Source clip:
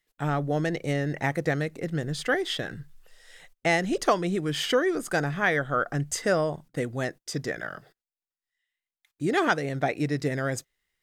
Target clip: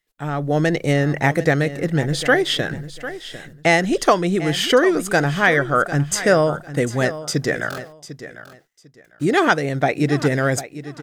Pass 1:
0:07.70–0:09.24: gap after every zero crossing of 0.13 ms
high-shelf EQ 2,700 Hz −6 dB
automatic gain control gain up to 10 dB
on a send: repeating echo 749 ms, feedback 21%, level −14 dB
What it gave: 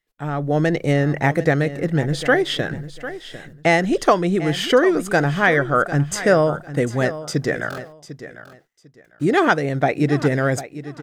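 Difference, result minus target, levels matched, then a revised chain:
4,000 Hz band −3.0 dB
0:07.70–0:09.24: gap after every zero crossing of 0.13 ms
automatic gain control gain up to 10 dB
on a send: repeating echo 749 ms, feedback 21%, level −14 dB

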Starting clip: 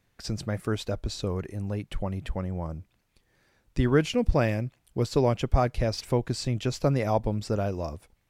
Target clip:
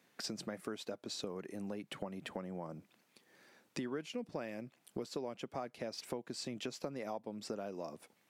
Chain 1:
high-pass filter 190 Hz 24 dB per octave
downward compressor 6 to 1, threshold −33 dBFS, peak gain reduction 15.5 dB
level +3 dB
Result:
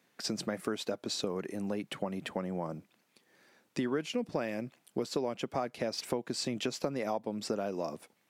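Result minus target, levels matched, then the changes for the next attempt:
downward compressor: peak gain reduction −8 dB
change: downward compressor 6 to 1, threshold −42.5 dBFS, peak gain reduction 23 dB

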